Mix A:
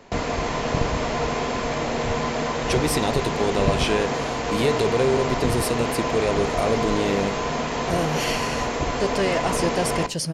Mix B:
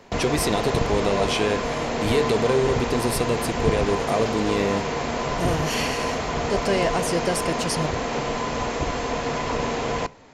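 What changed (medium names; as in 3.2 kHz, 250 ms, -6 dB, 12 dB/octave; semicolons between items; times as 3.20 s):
speech: entry -2.50 s; background: send -7.0 dB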